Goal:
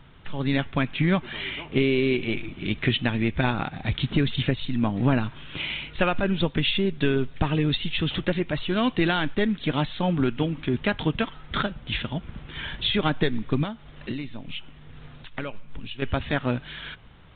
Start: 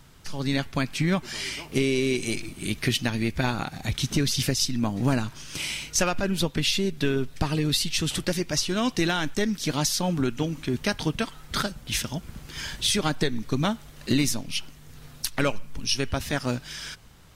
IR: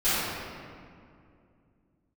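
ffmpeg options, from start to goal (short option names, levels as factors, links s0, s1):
-filter_complex "[0:a]asettb=1/sr,asplit=3[s0][s1][s2];[s0]atrim=end=13.634[s3];[s1]atrim=start=13.63:end=16.02,asetpts=PTS-STARTPTS,afade=t=in:d=0.004:c=qsin,afade=t=out:st=2.386:d=0.004:c=qsin,acompressor=threshold=0.0282:ratio=6[s4];[s2]atrim=start=16.016[s5];[s3][s4]acrossfade=d=0.004:c1=hsin:c2=qsin[s6];[s6][s5]acrossfade=d=0.004:c1=qsin:c2=hsin,volume=1.26" -ar 8000 -c:a pcm_mulaw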